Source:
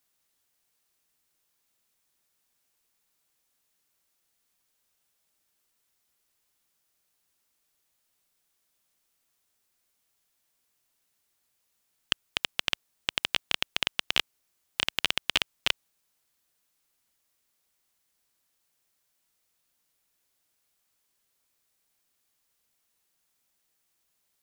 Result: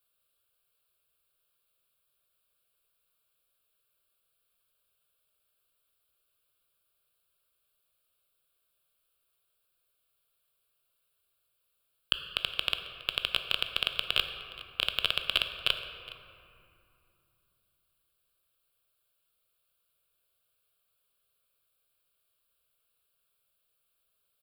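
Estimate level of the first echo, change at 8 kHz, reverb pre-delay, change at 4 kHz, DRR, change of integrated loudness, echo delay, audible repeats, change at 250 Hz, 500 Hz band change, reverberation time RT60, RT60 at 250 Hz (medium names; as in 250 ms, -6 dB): -19.0 dB, -10.0 dB, 14 ms, 0.0 dB, 6.5 dB, -1.0 dB, 415 ms, 1, -8.5 dB, 0.0 dB, 2.7 s, 4.1 s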